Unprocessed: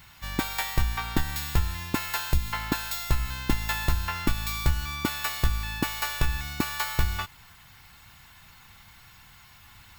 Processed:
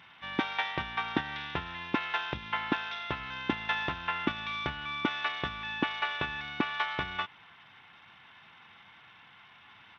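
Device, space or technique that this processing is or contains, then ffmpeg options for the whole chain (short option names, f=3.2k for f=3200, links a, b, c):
Bluetooth headset: -af "highpass=230,aresample=8000,aresample=44100" -ar 32000 -c:a sbc -b:a 64k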